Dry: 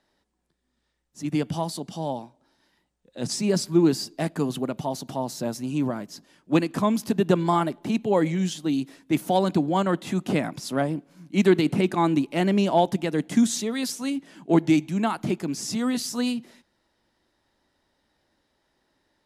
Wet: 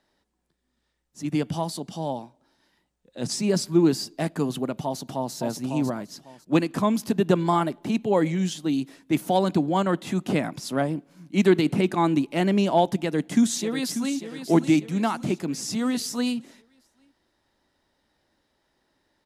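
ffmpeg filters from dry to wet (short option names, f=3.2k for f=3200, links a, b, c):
-filter_complex "[0:a]asplit=2[a][b];[b]afade=t=in:st=4.86:d=0.01,afade=t=out:st=5.34:d=0.01,aecho=0:1:550|1100|1650:0.530884|0.106177|0.0212354[c];[a][c]amix=inputs=2:normalize=0,asplit=2[d][e];[e]afade=t=in:st=12.99:d=0.01,afade=t=out:st=14.16:d=0.01,aecho=0:1:590|1180|1770|2360|2950:0.298538|0.149269|0.0746346|0.0373173|0.0186586[f];[d][f]amix=inputs=2:normalize=0"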